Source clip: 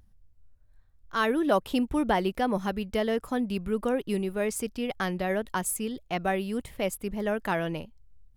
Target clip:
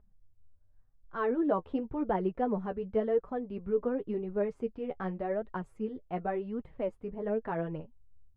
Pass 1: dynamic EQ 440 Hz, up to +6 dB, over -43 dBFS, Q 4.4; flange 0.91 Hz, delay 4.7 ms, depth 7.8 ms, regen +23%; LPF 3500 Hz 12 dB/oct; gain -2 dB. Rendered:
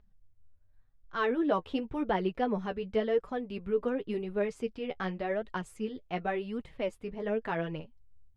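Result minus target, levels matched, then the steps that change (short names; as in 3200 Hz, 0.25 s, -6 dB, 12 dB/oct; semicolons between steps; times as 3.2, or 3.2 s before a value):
4000 Hz band +14.0 dB
change: LPF 1200 Hz 12 dB/oct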